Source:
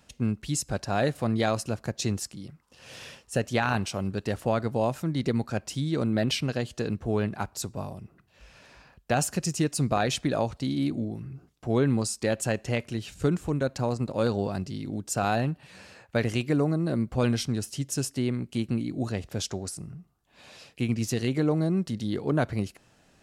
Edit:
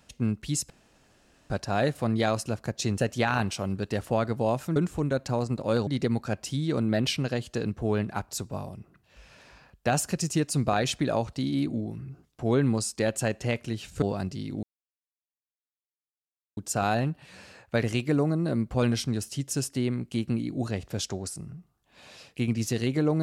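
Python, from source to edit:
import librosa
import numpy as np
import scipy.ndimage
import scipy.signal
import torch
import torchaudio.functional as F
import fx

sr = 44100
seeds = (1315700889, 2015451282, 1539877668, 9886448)

y = fx.edit(x, sr, fx.insert_room_tone(at_s=0.7, length_s=0.8),
    fx.cut(start_s=2.18, length_s=1.15),
    fx.move(start_s=13.26, length_s=1.11, to_s=5.11),
    fx.insert_silence(at_s=14.98, length_s=1.94), tone=tone)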